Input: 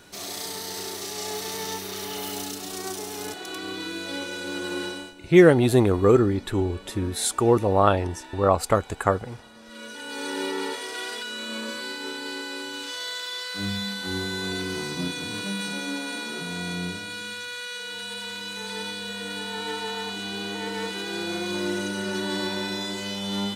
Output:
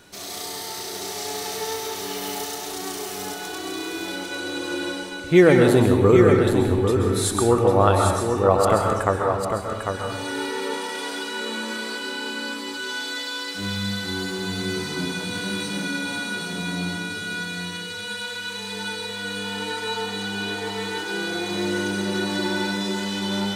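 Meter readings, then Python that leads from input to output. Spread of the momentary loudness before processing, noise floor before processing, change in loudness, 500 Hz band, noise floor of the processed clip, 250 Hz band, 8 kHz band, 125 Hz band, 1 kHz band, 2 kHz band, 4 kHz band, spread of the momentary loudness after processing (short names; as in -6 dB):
13 LU, -42 dBFS, +3.0 dB, +3.0 dB, -33 dBFS, +3.0 dB, +2.5 dB, +3.5 dB, +3.5 dB, +4.0 dB, +2.0 dB, 13 LU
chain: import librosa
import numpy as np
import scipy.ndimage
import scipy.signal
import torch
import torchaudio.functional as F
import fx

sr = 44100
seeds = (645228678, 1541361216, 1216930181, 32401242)

p1 = x + fx.echo_single(x, sr, ms=799, db=-6.0, dry=0)
y = fx.rev_plate(p1, sr, seeds[0], rt60_s=0.95, hf_ratio=0.5, predelay_ms=115, drr_db=2.0)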